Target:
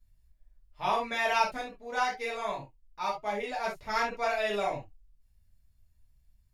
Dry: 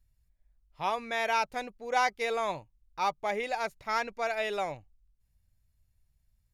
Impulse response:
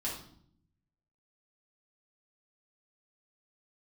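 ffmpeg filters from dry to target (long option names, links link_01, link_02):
-filter_complex "[0:a]asplit=3[link_01][link_02][link_03];[link_01]afade=type=out:start_time=1.56:duration=0.02[link_04];[link_02]flanger=delay=6.9:depth=2.4:regen=71:speed=1.2:shape=triangular,afade=type=in:start_time=1.56:duration=0.02,afade=type=out:start_time=3.63:duration=0.02[link_05];[link_03]afade=type=in:start_time=3.63:duration=0.02[link_06];[link_04][link_05][link_06]amix=inputs=3:normalize=0[link_07];[1:a]atrim=start_sample=2205,atrim=end_sample=3528[link_08];[link_07][link_08]afir=irnorm=-1:irlink=0"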